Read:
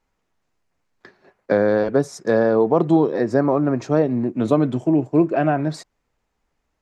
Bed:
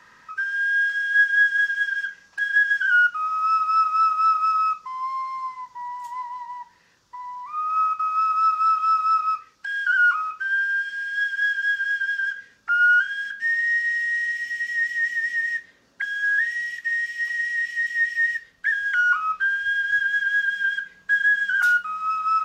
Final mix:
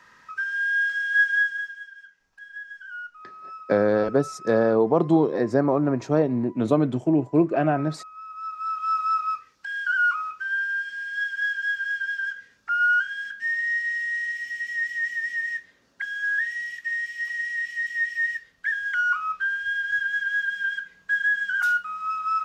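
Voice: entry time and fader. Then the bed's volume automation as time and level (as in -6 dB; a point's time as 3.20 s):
2.20 s, -3.0 dB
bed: 1.34 s -2 dB
1.92 s -19.5 dB
8.21 s -19.5 dB
8.96 s -3.5 dB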